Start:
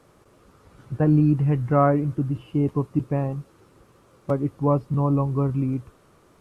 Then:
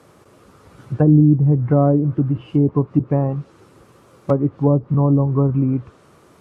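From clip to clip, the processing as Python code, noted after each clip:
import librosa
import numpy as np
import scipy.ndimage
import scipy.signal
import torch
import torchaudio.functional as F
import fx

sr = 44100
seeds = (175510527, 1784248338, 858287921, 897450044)

y = fx.env_lowpass_down(x, sr, base_hz=500.0, full_db=-16.5)
y = scipy.signal.sosfilt(scipy.signal.butter(2, 73.0, 'highpass', fs=sr, output='sos'), y)
y = y * 10.0 ** (6.5 / 20.0)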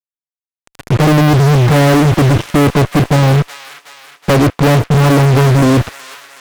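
y = fx.fuzz(x, sr, gain_db=39.0, gate_db=-36.0)
y = fx.echo_wet_highpass(y, sr, ms=371, feedback_pct=56, hz=1600.0, wet_db=-10)
y = y * 10.0 ** (5.5 / 20.0)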